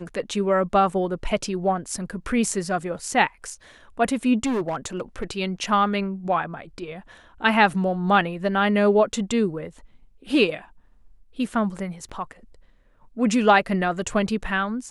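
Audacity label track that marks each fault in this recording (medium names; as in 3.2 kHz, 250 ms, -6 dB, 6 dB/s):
4.450000	5.240000	clipped -21 dBFS
12.090000	12.100000	dropout 6.4 ms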